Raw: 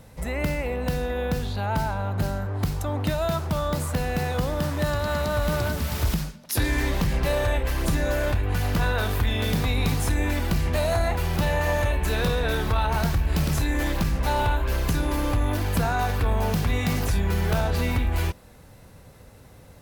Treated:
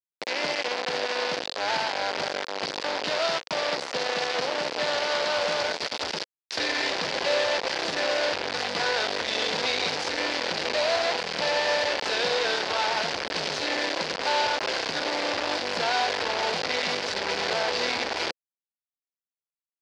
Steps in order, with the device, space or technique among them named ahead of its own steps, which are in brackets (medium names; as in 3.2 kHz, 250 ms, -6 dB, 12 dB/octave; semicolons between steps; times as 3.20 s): hand-held game console (bit crusher 4-bit; cabinet simulation 490–5300 Hz, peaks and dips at 510 Hz +4 dB, 1.2 kHz -5 dB, 4.7 kHz +6 dB)